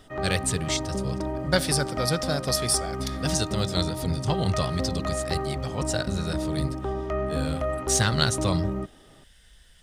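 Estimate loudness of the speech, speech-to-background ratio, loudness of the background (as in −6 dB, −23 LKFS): −28.0 LKFS, 3.0 dB, −31.0 LKFS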